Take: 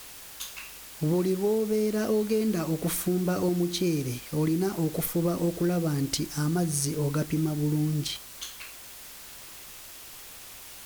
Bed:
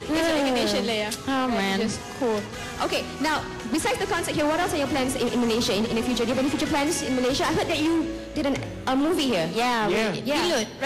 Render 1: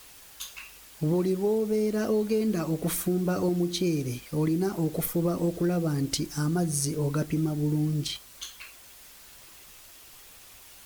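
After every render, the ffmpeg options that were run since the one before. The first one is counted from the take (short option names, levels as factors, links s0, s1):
-af "afftdn=nr=6:nf=-45"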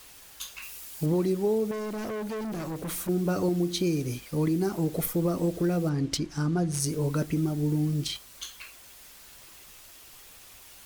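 -filter_complex "[0:a]asettb=1/sr,asplit=3[s0][s1][s2];[s0]atrim=end=0.624[s3];[s1]atrim=start=0.62:end=1.06,asetpts=PTS-STARTPTS,afade=t=in:d=0.004:c=qsin,afade=t=out:st=0.436:d=0.004:c=qsin,aemphasis=mode=production:type=cd[s4];[s2]atrim=start=1.056[s5];[s3][s4]acrossfade=d=0.004:c1=hsin:c2=qsin[s6];[s6][s5]acrossfade=d=0.004:c1=qsin:c2=hsin,asettb=1/sr,asplit=3[s7][s8][s9];[s7]atrim=end=1.714[s10];[s8]atrim=start=1.71:end=3.09,asetpts=PTS-STARTPTS,afade=t=in:d=0.004:c=qsin,afade=t=out:st=1.376:d=0.004:c=qsin,volume=37.6,asoftclip=hard,volume=0.0266[s11];[s9]atrim=start=3.086[s12];[s10][s11]acrossfade=d=0.004:c1=hsin:c2=qsin[s13];[s13][s12]acrossfade=d=0.004:c1=qsin:c2=hsin,asettb=1/sr,asplit=3[s14][s15][s16];[s14]atrim=end=5.894[s17];[s15]atrim=start=5.89:end=6.8,asetpts=PTS-STARTPTS,afade=t=in:d=0.004:c=qsin,afade=t=out:st=0.906:d=0.004:c=qsin,adynamicsmooth=sensitivity=6.5:basefreq=4100[s18];[s16]atrim=start=6.796[s19];[s17][s18]acrossfade=d=0.004:c1=hsin:c2=qsin[s20];[s20][s19]acrossfade=d=0.004:c1=qsin:c2=hsin"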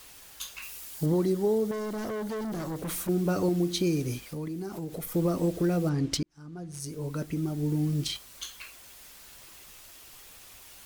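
-filter_complex "[0:a]asettb=1/sr,asplit=3[s0][s1][s2];[s0]atrim=end=0.984[s3];[s1]atrim=start=0.98:end=2.79,asetpts=PTS-STARTPTS,afade=t=in:d=0.004:c=qsin,afade=t=out:st=1.806:d=0.004:c=qsin,equalizer=f=2500:w=7:g=-9.5[s4];[s2]atrim=start=2.786[s5];[s3][s4]acrossfade=d=0.004:c1=hsin:c2=qsin[s6];[s6][s5]acrossfade=d=0.004:c1=qsin:c2=hsin,asettb=1/sr,asplit=3[s7][s8][s9];[s7]atrim=end=4.184[s10];[s8]atrim=start=4.18:end=5.12,asetpts=PTS-STARTPTS,afade=t=in:d=0.004:c=qsin,afade=t=out:st=0.936:d=0.004:c=qsin,acompressor=threshold=0.0178:ratio=3:attack=3.2:release=140:knee=1:detection=peak[s11];[s9]atrim=start=5.116[s12];[s10][s11]acrossfade=d=0.004:c1=hsin:c2=qsin[s13];[s13][s12]acrossfade=d=0.004:c1=qsin:c2=hsin,asplit=2[s14][s15];[s14]atrim=end=6.23,asetpts=PTS-STARTPTS,afade=t=out:st=6.226:d=0.004:c=hsin[s16];[s15]atrim=start=6.23,asetpts=PTS-STARTPTS,afade=t=in:d=1.79[s17];[s16][s17]concat=n=2:v=0:a=1"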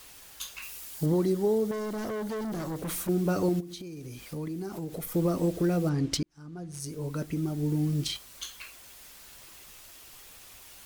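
-filter_complex "[0:a]asplit=3[s0][s1][s2];[s0]afade=t=out:st=3.59:d=0.02[s3];[s1]acompressor=threshold=0.0141:ratio=20:attack=3.2:release=140:knee=1:detection=peak,afade=t=in:st=3.59:d=0.02,afade=t=out:st=4.31:d=0.02[s4];[s2]afade=t=in:st=4.31:d=0.02[s5];[s3][s4][s5]amix=inputs=3:normalize=0"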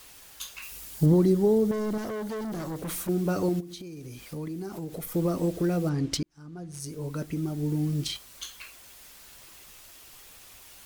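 -filter_complex "[0:a]asettb=1/sr,asplit=3[s0][s1][s2];[s0]atrim=end=0.714[s3];[s1]atrim=start=0.71:end=1.98,asetpts=PTS-STARTPTS,afade=t=in:d=0.004:c=qsin,afade=t=out:st=1.266:d=0.004:c=qsin,lowshelf=f=290:g=9.5[s4];[s2]atrim=start=1.976[s5];[s3][s4]acrossfade=d=0.004:c1=hsin:c2=qsin[s6];[s6][s5]acrossfade=d=0.004:c1=qsin:c2=hsin"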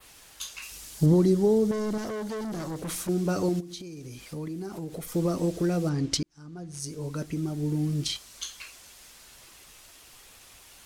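-af "lowpass=12000,adynamicequalizer=threshold=0.00282:dfrequency=5900:dqfactor=0.97:tfrequency=5900:tqfactor=0.97:attack=5:release=100:ratio=0.375:range=2.5:mode=boostabove:tftype=bell"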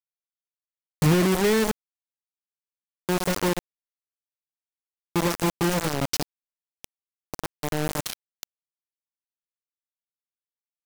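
-af "acrusher=bits=3:mix=0:aa=0.000001"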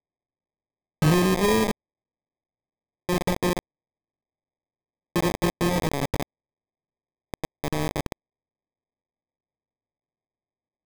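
-af "acrusher=samples=31:mix=1:aa=0.000001"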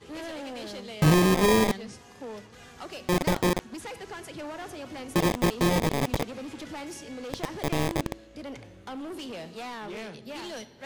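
-filter_complex "[1:a]volume=0.178[s0];[0:a][s0]amix=inputs=2:normalize=0"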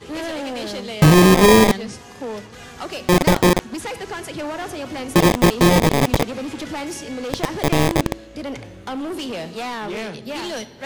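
-af "volume=3.16,alimiter=limit=0.708:level=0:latency=1"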